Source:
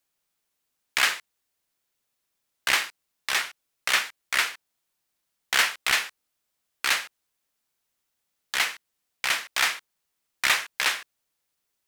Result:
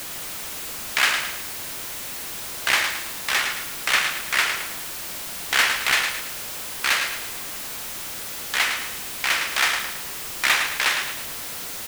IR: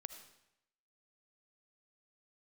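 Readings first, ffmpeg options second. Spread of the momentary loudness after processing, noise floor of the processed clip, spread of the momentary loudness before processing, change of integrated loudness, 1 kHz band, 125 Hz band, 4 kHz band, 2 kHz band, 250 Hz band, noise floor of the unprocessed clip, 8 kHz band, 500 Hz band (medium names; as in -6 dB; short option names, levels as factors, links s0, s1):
10 LU, -33 dBFS, 14 LU, +1.5 dB, +4.5 dB, no reading, +4.0 dB, +4.0 dB, +9.0 dB, -80 dBFS, +5.0 dB, +6.0 dB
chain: -filter_complex "[0:a]aeval=exprs='val(0)+0.5*0.0422*sgn(val(0))':c=same,aecho=1:1:109|218|327|436|545:0.447|0.188|0.0788|0.0331|0.0139,asplit=2[s0][s1];[1:a]atrim=start_sample=2205,lowpass=4100[s2];[s1][s2]afir=irnorm=-1:irlink=0,volume=0.355[s3];[s0][s3]amix=inputs=2:normalize=0"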